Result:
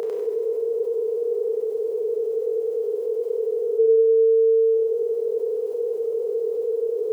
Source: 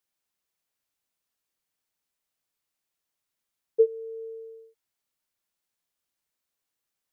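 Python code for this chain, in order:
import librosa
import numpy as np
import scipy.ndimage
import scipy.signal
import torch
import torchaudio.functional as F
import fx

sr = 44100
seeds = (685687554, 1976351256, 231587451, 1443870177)

y = fx.bin_compress(x, sr, power=0.2)
y = scipy.signal.sosfilt(scipy.signal.butter(2, 440.0, 'highpass', fs=sr, output='sos'), y)
y = fx.notch(y, sr, hz=560.0, q=12.0)
y = fx.doubler(y, sr, ms=31.0, db=-7.5)
y = fx.echo_feedback(y, sr, ms=98, feedback_pct=38, wet_db=-3.0)
y = fx.rev_schroeder(y, sr, rt60_s=1.8, comb_ms=32, drr_db=1.5)
y = fx.env_flatten(y, sr, amount_pct=50)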